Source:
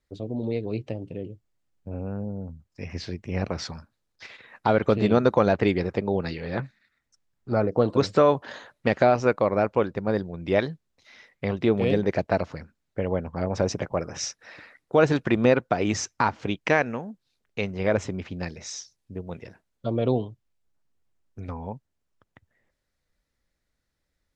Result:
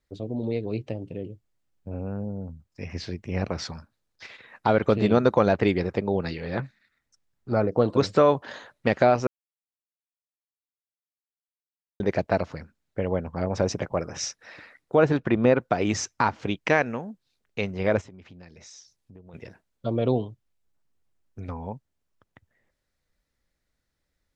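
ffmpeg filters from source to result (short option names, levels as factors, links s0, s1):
-filter_complex "[0:a]asettb=1/sr,asplit=3[s0][s1][s2];[s0]atrim=end=14.954[s3];[s1]atrim=start=14.95:end=15.61,asetpts=PTS-STARTPTS,afade=t=in:d=0.004:c=qsin,afade=t=out:st=0.656:d=0.004:c=qsin,lowpass=f=2100:p=1[s4];[s2]atrim=start=15.606[s5];[s3][s4]acrossfade=d=0.004:c1=hsin:c2=qsin[s6];[s6][s5]acrossfade=d=0.004:c1=qsin:c2=hsin,asplit=3[s7][s8][s9];[s7]afade=t=out:st=18:d=0.02[s10];[s8]acompressor=threshold=0.00398:ratio=3:attack=3.2:release=140:knee=1:detection=peak,afade=t=in:st=18:d=0.02,afade=t=out:st=19.33:d=0.02[s11];[s9]afade=t=in:st=19.33:d=0.02[s12];[s10][s11][s12]amix=inputs=3:normalize=0,asplit=3[s13][s14][s15];[s13]atrim=end=9.27,asetpts=PTS-STARTPTS,afade=t=out:st=9.266:d=0.004:c=hsin[s16];[s14]atrim=start=9.27:end=12,asetpts=PTS-STARTPTS,volume=0[s17];[s15]atrim=start=12,asetpts=PTS-STARTPTS,afade=t=in:d=0.004:c=hsin[s18];[s16][s17][s18]concat=n=3:v=0:a=1"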